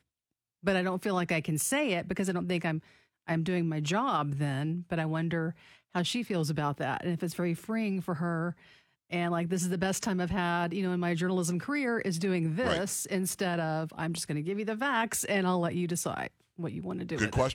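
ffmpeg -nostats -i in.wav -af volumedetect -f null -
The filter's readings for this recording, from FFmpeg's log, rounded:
mean_volume: -31.2 dB
max_volume: -13.6 dB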